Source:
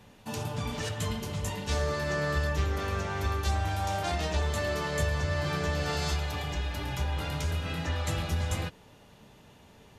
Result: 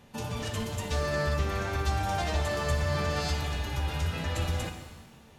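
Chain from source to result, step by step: time stretch by phase-locked vocoder 0.54×; shimmer reverb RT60 1.2 s, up +7 st, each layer -8 dB, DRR 5.5 dB

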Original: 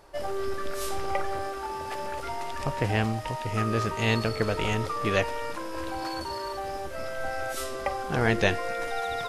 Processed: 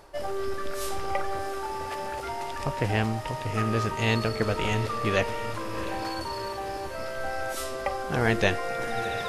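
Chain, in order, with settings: reverse; upward compressor, threshold -30 dBFS; reverse; diffused feedback echo 0.718 s, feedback 45%, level -12.5 dB

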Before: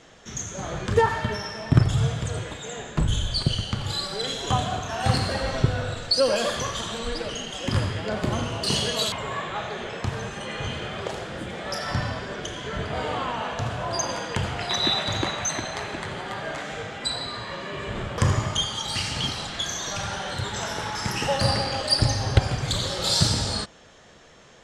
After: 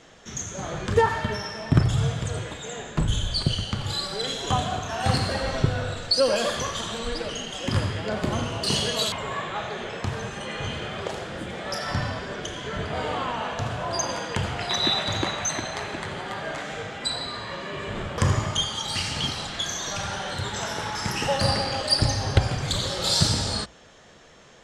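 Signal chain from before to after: notches 60/120 Hz

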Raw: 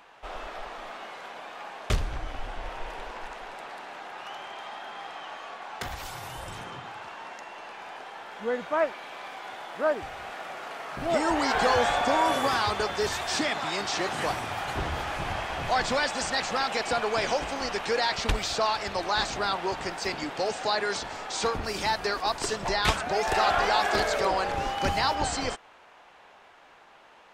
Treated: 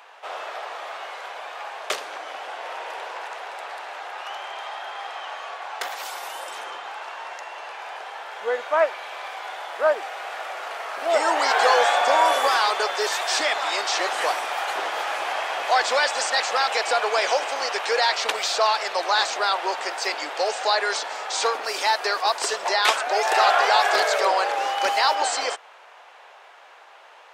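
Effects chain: HPF 460 Hz 24 dB/oct; gain +6 dB

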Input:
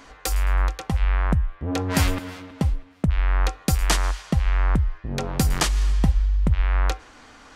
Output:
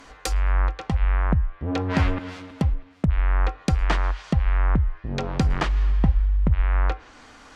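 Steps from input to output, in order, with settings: treble ducked by the level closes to 2300 Hz, closed at -18.5 dBFS

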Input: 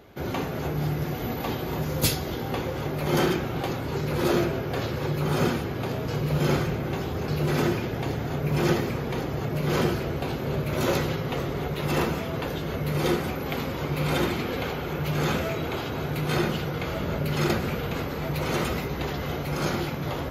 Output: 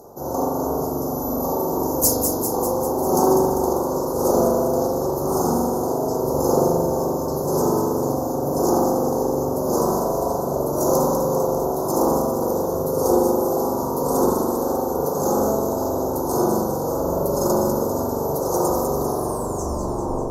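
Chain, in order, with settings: tape stop at the end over 1.32 s; tone controls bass -12 dB, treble +7 dB; reverse; upward compressor, threshold -31 dBFS; reverse; tube stage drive 11 dB, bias 0.35; Chebyshev band-stop 1000–5900 Hz, order 3; thin delay 0.198 s, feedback 65%, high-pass 5300 Hz, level -5 dB; spring tank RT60 1.6 s, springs 42 ms, chirp 55 ms, DRR -5.5 dB; gain +5.5 dB

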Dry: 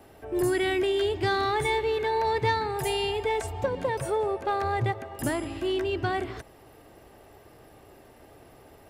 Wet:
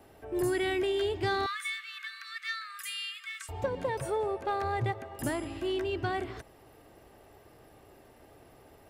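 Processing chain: 1.46–3.49 brick-wall FIR high-pass 1100 Hz; gain -4 dB

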